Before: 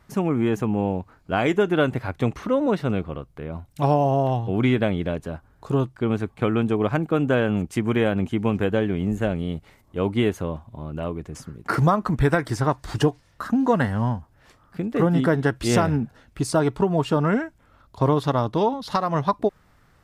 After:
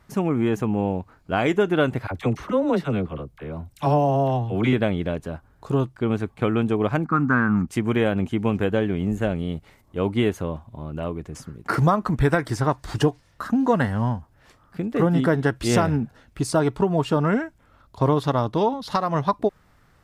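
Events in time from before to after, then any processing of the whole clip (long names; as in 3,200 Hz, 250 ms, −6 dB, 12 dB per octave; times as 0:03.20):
0:02.07–0:04.73: all-pass dispersion lows, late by 41 ms, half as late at 760 Hz
0:07.04–0:07.68: drawn EQ curve 120 Hz 0 dB, 240 Hz +5 dB, 390 Hz −8 dB, 570 Hz −16 dB, 820 Hz −1 dB, 1,200 Hz +12 dB, 2,000 Hz +1 dB, 3,200 Hz −24 dB, 4,600 Hz +1 dB, 11,000 Hz −19 dB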